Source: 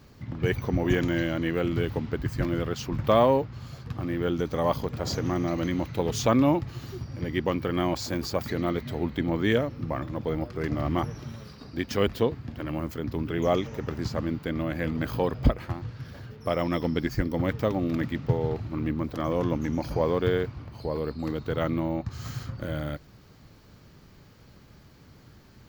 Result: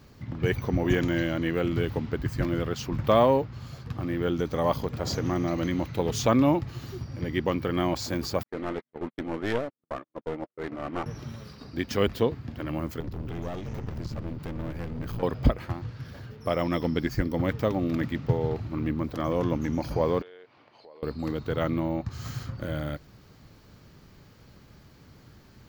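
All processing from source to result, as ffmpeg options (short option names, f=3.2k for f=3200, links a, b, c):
-filter_complex "[0:a]asettb=1/sr,asplit=3[a][b][c];[a]atrim=end=8.434[d];[b]atrim=start=8.43:end=11.06,asetpts=PTS-STARTPTS,afade=t=in:d=0.004:c=qsin,afade=t=out:st=2.626:d=0.004:c=qsin,highpass=290,lowpass=2.5k,agate=range=-52dB:threshold=-34dB:ratio=16:release=100:detection=peak,aeval=exprs='clip(val(0),-1,0.0237)':c=same[e];[c]atrim=start=11.056[f];[d][e]acrossfade=d=0.004:c1=hsin:c2=qsin[g];[g][f]acrossfade=d=0.004:c1=qsin:c2=hsin,asettb=1/sr,asplit=3[h][i][j];[h]atrim=end=13.004[k];[i]atrim=start=13:end=15.23,asetpts=PTS-STARTPTS,afade=t=in:d=0.004:c=qsin,afade=t=out:st=2.226:d=0.004:c=qsin,lowshelf=f=160:g=11.5,acompressor=threshold=-27dB:ratio=5:attack=3.2:release=140:knee=1:detection=peak,aeval=exprs='clip(val(0),-1,0.0133)':c=same[l];[j]atrim=start=15.226[m];[k][l]acrossfade=d=0.004:c1=hsin:c2=qsin[n];[n][m]acrossfade=d=0.004:c1=qsin:c2=hsin,asettb=1/sr,asplit=3[o][p][q];[o]atrim=end=20.224[r];[p]atrim=start=20.22:end=21.03,asetpts=PTS-STARTPTS,afade=t=in:d=0.004:c=qsin,afade=t=out:st=0.806:d=0.004:c=qsin,highpass=650,lowpass=3.3k,equalizer=f=1.3k:w=1.1:g=-7,acompressor=threshold=-50dB:ratio=3:attack=3.2:release=140:knee=1:detection=peak[s];[q]atrim=start=21.026[t];[r][s]acrossfade=d=0.004:c1=hsin:c2=qsin[u];[u][t]acrossfade=d=0.004:c1=qsin:c2=hsin"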